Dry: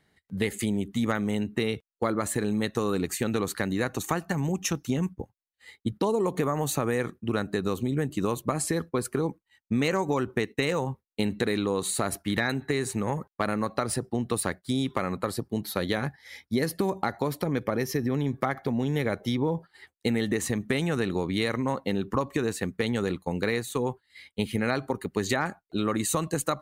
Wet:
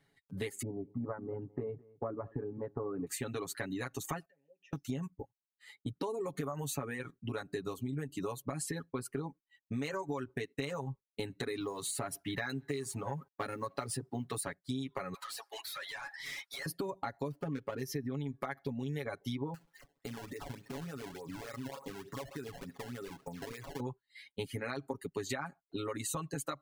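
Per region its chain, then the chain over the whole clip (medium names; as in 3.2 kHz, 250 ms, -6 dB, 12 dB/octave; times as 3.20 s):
0.62–3.07 s: low-pass 1.1 kHz 24 dB/octave + delay 212 ms -16 dB
4.25–4.73 s: compression, threshold -39 dBFS + vowel filter e
11.60–14.42 s: companding laws mixed up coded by mu + high-pass 53 Hz
15.14–16.66 s: high-pass 760 Hz 24 dB/octave + compression 12:1, threshold -42 dBFS + overdrive pedal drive 28 dB, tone 7 kHz, clips at -29.5 dBFS
17.31–17.82 s: median filter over 25 samples + peaking EQ 1.4 kHz +4 dB 0.68 oct
19.54–23.80 s: thinning echo 66 ms, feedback 51%, high-pass 390 Hz, level -12 dB + compression 4:1, threshold -34 dBFS + decimation with a swept rate 21×, swing 160% 3.4 Hz
whole clip: reverb removal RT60 1.1 s; comb 7.2 ms, depth 85%; compression 2.5:1, threshold -30 dBFS; trim -6.5 dB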